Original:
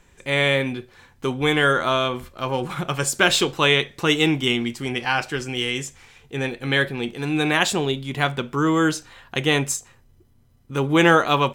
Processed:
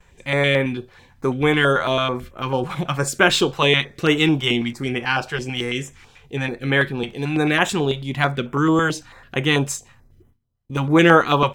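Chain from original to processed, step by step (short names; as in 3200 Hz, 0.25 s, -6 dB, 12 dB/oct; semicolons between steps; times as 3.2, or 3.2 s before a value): gate with hold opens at -47 dBFS; bell 11000 Hz -7 dB 2 oct; stepped notch 9.1 Hz 280–4500 Hz; gain +3.5 dB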